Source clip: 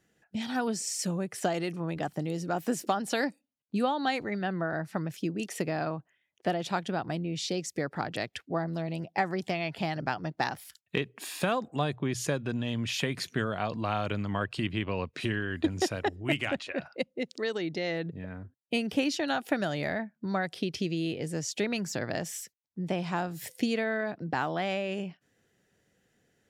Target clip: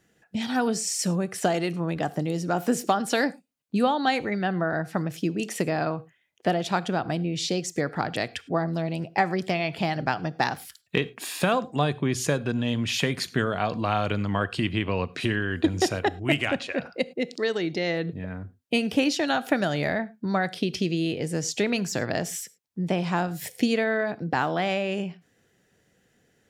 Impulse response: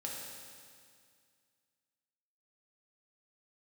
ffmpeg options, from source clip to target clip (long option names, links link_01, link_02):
-filter_complex "[0:a]asplit=2[link_01][link_02];[1:a]atrim=start_sample=2205,atrim=end_sample=4410,asetrate=38367,aresample=44100[link_03];[link_02][link_03]afir=irnorm=-1:irlink=0,volume=-13dB[link_04];[link_01][link_04]amix=inputs=2:normalize=0,volume=4dB"